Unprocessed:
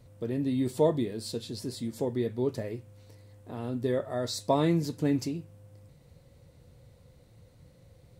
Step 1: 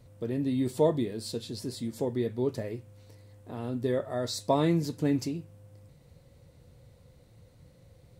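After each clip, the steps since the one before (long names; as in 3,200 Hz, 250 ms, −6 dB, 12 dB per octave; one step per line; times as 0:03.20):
no processing that can be heard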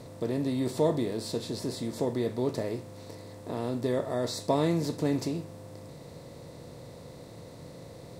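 compressor on every frequency bin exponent 0.6
level −3 dB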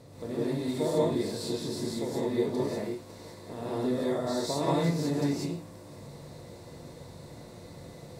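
reverb whose tail is shaped and stops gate 220 ms rising, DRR −7.5 dB
level −7.5 dB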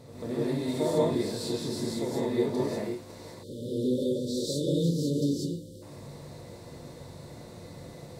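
echo ahead of the sound 137 ms −13.5 dB
time-frequency box erased 0:03.43–0:05.82, 600–2,900 Hz
level +1 dB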